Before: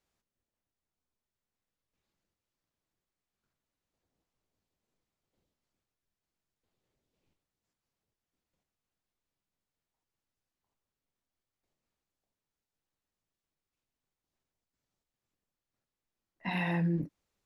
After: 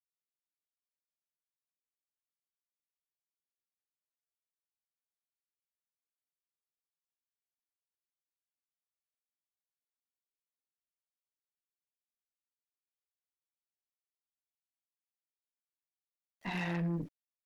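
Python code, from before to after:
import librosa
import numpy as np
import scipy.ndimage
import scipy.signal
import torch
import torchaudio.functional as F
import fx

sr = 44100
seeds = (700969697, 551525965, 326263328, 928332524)

y = fx.cheby_harmonics(x, sr, harmonics=(5, 6), levels_db=(-25, -20), full_scale_db=-20.0)
y = np.where(np.abs(y) >= 10.0 ** (-55.5 / 20.0), y, 0.0)
y = y * 10.0 ** (-5.0 / 20.0)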